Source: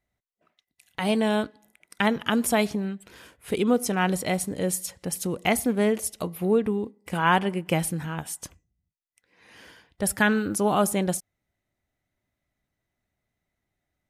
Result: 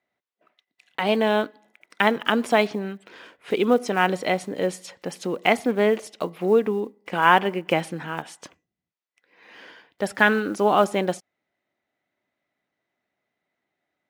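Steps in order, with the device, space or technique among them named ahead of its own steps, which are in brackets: early digital voice recorder (BPF 290–3700 Hz; block floating point 7-bit); gain +5 dB

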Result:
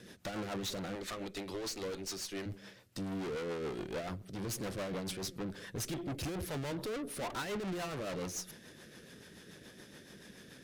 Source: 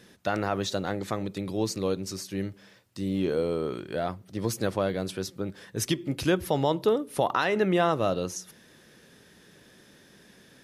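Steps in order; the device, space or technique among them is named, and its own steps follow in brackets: 0.95–2.46 weighting filter A; overdriven rotary cabinet (tube stage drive 41 dB, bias 0.6; rotary speaker horn 7 Hz); gain +6 dB

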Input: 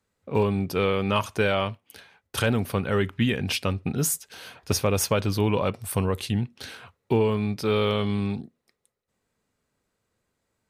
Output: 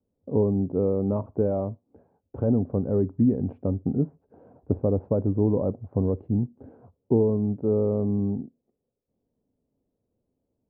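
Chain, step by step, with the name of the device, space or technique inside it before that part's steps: under water (LPF 670 Hz 24 dB/oct; bell 270 Hz +7 dB 0.41 oct)

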